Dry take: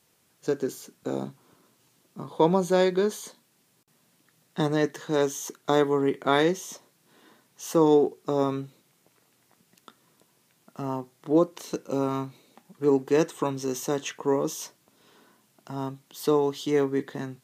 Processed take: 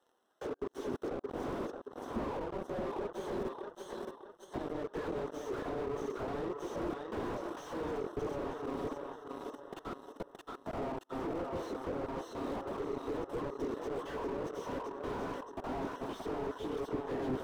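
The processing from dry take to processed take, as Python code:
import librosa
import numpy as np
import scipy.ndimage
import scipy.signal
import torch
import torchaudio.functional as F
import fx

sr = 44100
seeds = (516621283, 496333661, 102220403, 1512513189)

y = fx.phase_scramble(x, sr, seeds[0], window_ms=50)
y = fx.rev_fdn(y, sr, rt60_s=0.95, lf_ratio=1.3, hf_ratio=0.4, size_ms=83.0, drr_db=18.5)
y = fx.level_steps(y, sr, step_db=15)
y = fx.gate_flip(y, sr, shuts_db=-25.0, range_db=-33)
y = scipy.signal.sosfilt(scipy.signal.butter(4, 270.0, 'highpass', fs=sr, output='sos'), y)
y = 10.0 ** (-26.0 / 20.0) * np.tanh(y / 10.0 ** (-26.0 / 20.0))
y = fx.leveller(y, sr, passes=5)
y = fx.over_compress(y, sr, threshold_db=-37.0, ratio=-0.5)
y = scipy.signal.lfilter(np.full(19, 1.0 / 19), 1.0, y)
y = fx.low_shelf(y, sr, hz=450.0, db=-10.5)
y = fx.echo_feedback(y, sr, ms=622, feedback_pct=40, wet_db=-8.5)
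y = fx.slew_limit(y, sr, full_power_hz=1.6)
y = y * librosa.db_to_amplitude(15.5)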